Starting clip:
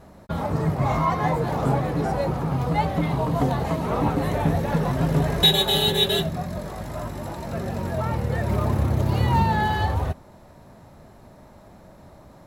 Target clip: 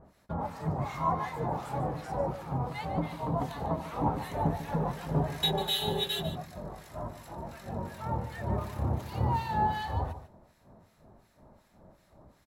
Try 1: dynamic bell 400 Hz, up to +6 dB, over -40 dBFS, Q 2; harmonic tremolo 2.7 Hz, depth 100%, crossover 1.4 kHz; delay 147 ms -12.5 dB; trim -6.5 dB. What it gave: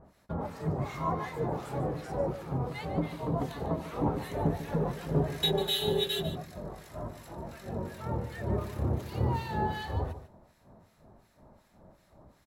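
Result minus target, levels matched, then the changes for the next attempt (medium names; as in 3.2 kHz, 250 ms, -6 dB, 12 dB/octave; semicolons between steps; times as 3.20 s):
1 kHz band -4.5 dB
change: dynamic bell 870 Hz, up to +6 dB, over -40 dBFS, Q 2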